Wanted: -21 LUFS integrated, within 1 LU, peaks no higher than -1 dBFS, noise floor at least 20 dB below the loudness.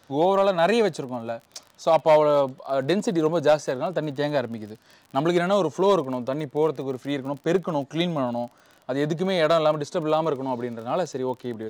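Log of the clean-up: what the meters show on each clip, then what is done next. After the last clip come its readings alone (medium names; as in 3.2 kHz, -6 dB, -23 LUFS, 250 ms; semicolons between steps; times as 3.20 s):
tick rate 31 per s; loudness -24.0 LUFS; peak level -8.5 dBFS; loudness target -21.0 LUFS
-> de-click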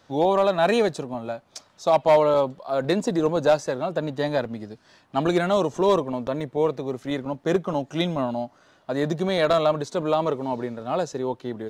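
tick rate 0.17 per s; loudness -24.0 LUFS; peak level -8.5 dBFS; loudness target -21.0 LUFS
-> trim +3 dB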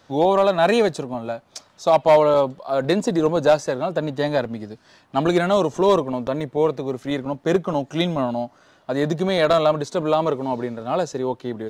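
loudness -21.0 LUFS; peak level -5.5 dBFS; noise floor -56 dBFS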